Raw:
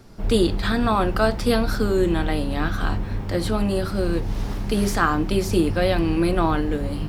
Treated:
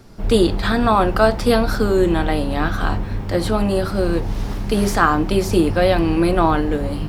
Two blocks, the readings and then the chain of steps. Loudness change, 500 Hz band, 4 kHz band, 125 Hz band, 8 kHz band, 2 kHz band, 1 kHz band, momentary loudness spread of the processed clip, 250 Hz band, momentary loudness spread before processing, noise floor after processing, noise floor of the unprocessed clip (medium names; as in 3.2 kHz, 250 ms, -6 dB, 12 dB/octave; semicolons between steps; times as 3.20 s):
+4.0 dB, +5.0 dB, +3.0 dB, +2.5 dB, +2.5 dB, +4.0 dB, +5.5 dB, 7 LU, +3.5 dB, 6 LU, -26 dBFS, -29 dBFS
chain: dynamic bell 760 Hz, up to +4 dB, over -34 dBFS, Q 0.79; trim +2.5 dB